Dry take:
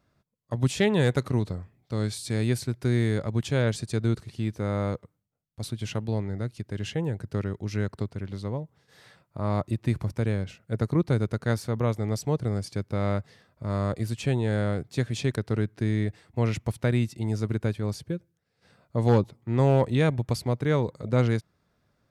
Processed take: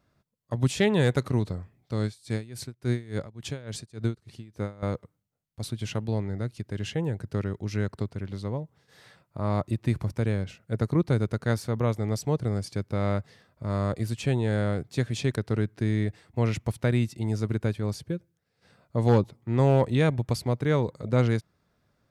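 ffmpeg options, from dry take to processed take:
-filter_complex "[0:a]asettb=1/sr,asplit=3[s0][s1][s2];[s0]atrim=end=2.054[s3];[s1]atrim=start=2.05:end=4.83,asetpts=PTS-STARTPTS,afade=t=in:d=0.004:c=qsin,afade=t=out:st=2.776:d=0.004:c=qsin,aeval=exprs='val(0)*pow(10,-22*(0.5-0.5*cos(2*PI*3.5*n/s))/20)':c=same[s4];[s2]atrim=start=4.826[s5];[s3][s4]acrossfade=d=0.004:c1=hsin:c2=qsin[s6];[s6][s5]acrossfade=d=0.004:c1=qsin:c2=hsin"

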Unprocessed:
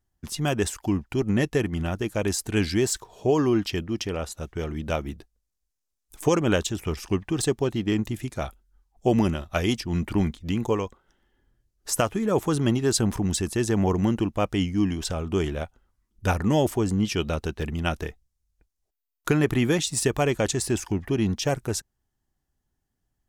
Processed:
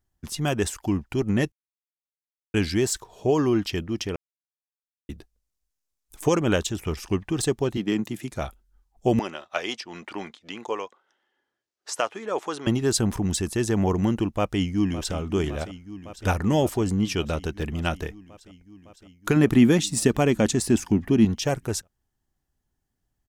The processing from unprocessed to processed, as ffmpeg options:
-filter_complex "[0:a]asettb=1/sr,asplit=3[s0][s1][s2];[s0]atrim=end=7.774[s3];[s1]atrim=start=7.77:end=8.31,asetpts=PTS-STARTPTS,afade=t=in:d=0.004:c=qsin,afade=t=out:st=0.536:d=0.004:c=qsin,highpass=f=140:w=0.5412,highpass=f=140:w=1.3066[s4];[s2]atrim=start=8.306[s5];[s3][s4]acrossfade=d=0.004:c1=hsin:c2=qsin[s6];[s6][s5]acrossfade=d=0.004:c1=qsin:c2=hsin,asettb=1/sr,asplit=3[s7][s8][s9];[s7]atrim=end=9.194[s10];[s8]atrim=start=9.19:end=12.67,asetpts=PTS-STARTPTS,afade=t=in:d=0.004:c=qsin,afade=t=out:st=3.476:d=0.004:c=qsin,highpass=530,lowpass=5800[s11];[s9]atrim=start=12.666[s12];[s10][s11]acrossfade=d=0.004:c1=hsin:c2=qsin[s13];[s13][s12]acrossfade=d=0.004:c1=qsin:c2=hsin,asplit=2[s14][s15];[s15]afade=t=in:st=14.28:d=0.01,afade=t=out:st=15.15:d=0.01,aecho=0:1:560|1120|1680|2240|2800|3360|3920|4480|5040|5600|6160|6720:0.199526|0.159621|0.127697|0.102157|0.0817259|0.0653808|0.0523046|0.0418437|0.0334749|0.02678|0.021424|0.0171392[s16];[s14][s16]amix=inputs=2:normalize=0,asettb=1/sr,asplit=3[s17][s18][s19];[s17]atrim=end=19.364[s20];[s18]atrim=start=19.36:end=21.25,asetpts=PTS-STARTPTS,afade=t=in:d=0.004:c=qsin,afade=t=out:st=1.886:d=0.004:c=qsin,equalizer=f=230:t=o:w=0.77:g=10[s21];[s19]atrim=start=21.246[s22];[s20][s21]acrossfade=d=0.004:c1=hsin:c2=qsin[s23];[s23][s22]acrossfade=d=0.004:c1=qsin:c2=hsin,asplit=5[s24][s25][s26][s27][s28];[s24]atrim=end=1.52,asetpts=PTS-STARTPTS,afade=t=out:st=1.516:d=0.004:c=hsin[s29];[s25]atrim=start=1.52:end=2.54,asetpts=PTS-STARTPTS,volume=0[s30];[s26]atrim=start=2.54:end=4.16,asetpts=PTS-STARTPTS,afade=t=in:d=0.004:c=hsin,afade=t=out:st=1.616:d=0.004:c=hsin[s31];[s27]atrim=start=4.16:end=5.09,asetpts=PTS-STARTPTS,volume=0[s32];[s28]atrim=start=5.09,asetpts=PTS-STARTPTS,afade=t=in:d=0.004:c=hsin[s33];[s29][s30][s31][s32][s33]concat=n=5:v=0:a=1"

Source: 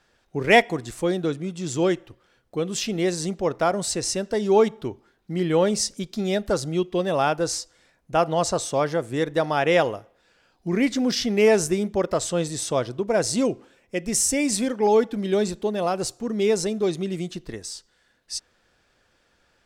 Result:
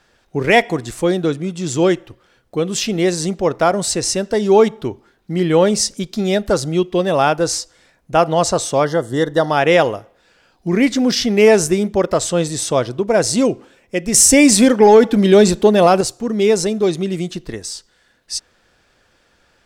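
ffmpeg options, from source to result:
-filter_complex "[0:a]asettb=1/sr,asplit=3[s0][s1][s2];[s0]atrim=end=8.854[s3];[s1]atrim=start=8.85:end=9.5,asetpts=PTS-STARTPTS,afade=t=in:d=0.004:c=qsin,afade=t=out:st=0.646:d=0.004:c=qsin,asuperstop=centerf=2400:order=20:qfactor=3.4[s4];[s2]atrim=start=9.496[s5];[s3][s4]acrossfade=d=0.004:c1=hsin:c2=qsin[s6];[s6][s5]acrossfade=d=0.004:c1=qsin:c2=hsin,asettb=1/sr,asplit=3[s7][s8][s9];[s7]atrim=end=14.144[s10];[s8]atrim=start=14.14:end=16.01,asetpts=PTS-STARTPTS,afade=t=in:d=0.004:c=qsin,afade=t=out:st=1.866:d=0.004:c=qsin,acontrast=83[s11];[s9]atrim=start=16.006[s12];[s10][s11]acrossfade=d=0.004:c1=hsin:c2=qsin[s13];[s13][s12]acrossfade=d=0.004:c1=qsin:c2=hsin,alimiter=level_in=2.51:limit=0.891:release=50:level=0:latency=1,volume=0.891"

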